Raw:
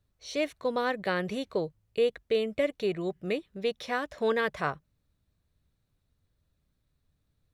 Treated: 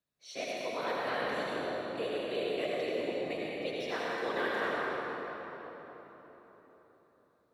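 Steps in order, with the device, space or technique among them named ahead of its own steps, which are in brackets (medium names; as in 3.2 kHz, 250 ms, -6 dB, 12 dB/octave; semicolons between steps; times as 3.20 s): whispering ghost (whisper effect; high-pass 550 Hz 6 dB/octave; reverberation RT60 4.2 s, pre-delay 69 ms, DRR -6 dB); trim -7.5 dB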